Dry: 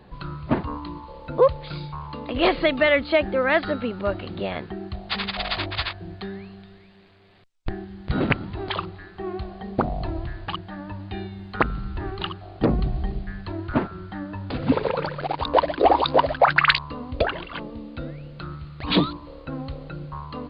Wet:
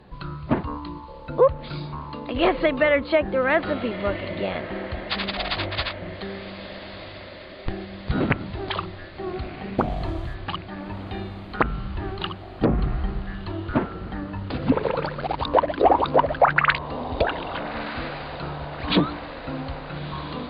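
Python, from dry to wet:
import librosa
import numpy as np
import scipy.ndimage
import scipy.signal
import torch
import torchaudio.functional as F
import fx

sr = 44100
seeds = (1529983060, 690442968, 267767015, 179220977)

y = fx.mod_noise(x, sr, seeds[0], snr_db=33, at=(9.78, 10.35))
y = fx.echo_diffused(y, sr, ms=1322, feedback_pct=63, wet_db=-14.0)
y = fx.env_lowpass_down(y, sr, base_hz=2200.0, full_db=-15.0)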